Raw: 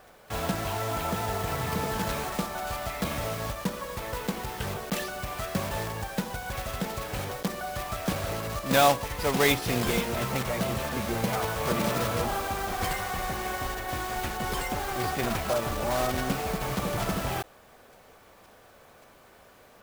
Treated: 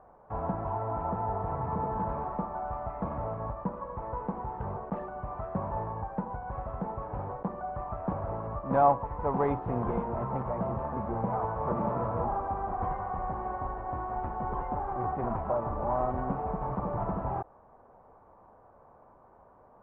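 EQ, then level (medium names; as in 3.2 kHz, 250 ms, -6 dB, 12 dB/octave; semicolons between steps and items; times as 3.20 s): four-pole ladder low-pass 1.1 kHz, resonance 55%; distance through air 54 m; bass shelf 200 Hz +5 dB; +4.0 dB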